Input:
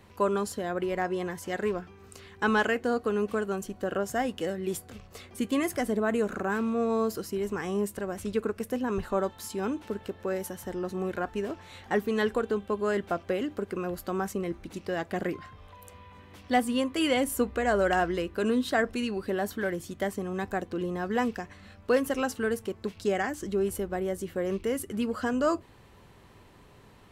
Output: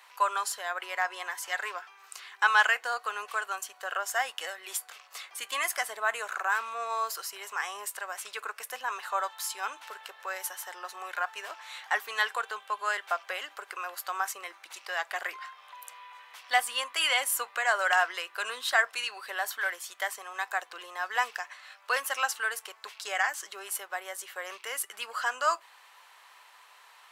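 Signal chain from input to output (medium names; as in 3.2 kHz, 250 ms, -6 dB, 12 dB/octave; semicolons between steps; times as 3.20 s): high-pass 880 Hz 24 dB/octave; trim +6 dB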